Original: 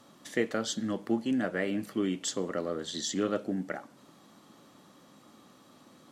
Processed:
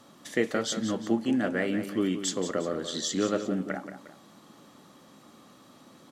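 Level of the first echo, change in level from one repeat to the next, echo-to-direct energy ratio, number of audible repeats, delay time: -10.0 dB, -7.5 dB, -9.5 dB, 2, 178 ms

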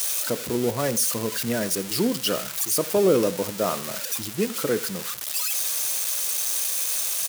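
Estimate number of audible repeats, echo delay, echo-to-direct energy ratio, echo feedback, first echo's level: 2, 82 ms, -18.0 dB, 27%, -18.5 dB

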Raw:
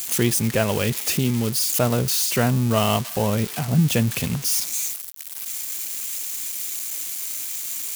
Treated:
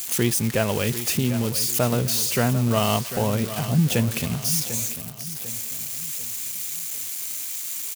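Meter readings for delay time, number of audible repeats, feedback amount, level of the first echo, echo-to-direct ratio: 746 ms, 3, 39%, -12.5 dB, -12.0 dB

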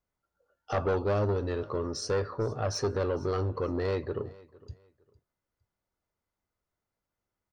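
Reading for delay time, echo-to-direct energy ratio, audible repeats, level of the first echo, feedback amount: 457 ms, -21.5 dB, 2, -22.0 dB, 26%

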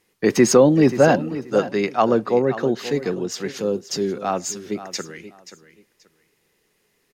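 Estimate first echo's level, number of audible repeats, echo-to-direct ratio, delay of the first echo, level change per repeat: -14.0 dB, 2, -14.0 dB, 531 ms, -13.5 dB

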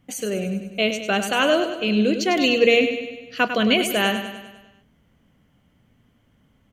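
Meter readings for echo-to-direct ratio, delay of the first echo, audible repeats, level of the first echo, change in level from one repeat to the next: -7.5 dB, 100 ms, 6, -9.0 dB, -5.0 dB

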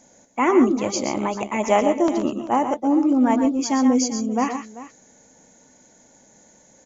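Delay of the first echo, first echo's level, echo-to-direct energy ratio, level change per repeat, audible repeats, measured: 119 ms, -10.0 dB, -7.0 dB, no regular repeats, 2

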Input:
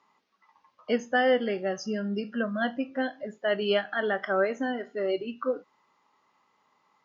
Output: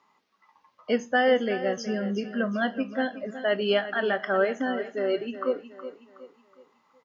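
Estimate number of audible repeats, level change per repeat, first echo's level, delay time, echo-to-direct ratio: 3, -8.0 dB, -12.5 dB, 369 ms, -11.5 dB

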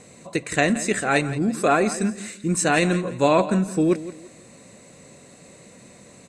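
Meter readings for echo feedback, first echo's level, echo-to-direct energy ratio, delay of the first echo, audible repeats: 29%, -15.0 dB, -14.5 dB, 170 ms, 2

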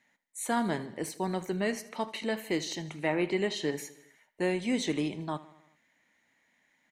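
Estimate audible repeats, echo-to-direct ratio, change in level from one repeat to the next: 4, -16.0 dB, -4.5 dB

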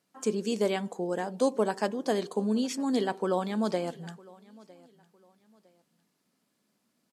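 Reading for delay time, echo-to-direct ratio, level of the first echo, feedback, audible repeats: 957 ms, -23.0 dB, -23.5 dB, 30%, 2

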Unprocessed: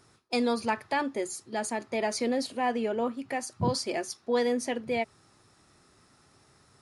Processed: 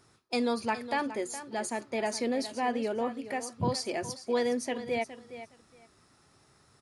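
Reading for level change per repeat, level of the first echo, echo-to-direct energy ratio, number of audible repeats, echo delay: -15.0 dB, -13.0 dB, -13.0 dB, 2, 415 ms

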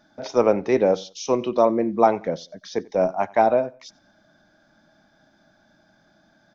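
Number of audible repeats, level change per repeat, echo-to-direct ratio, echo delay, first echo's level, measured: 2, -9.5 dB, -23.5 dB, 91 ms, -24.0 dB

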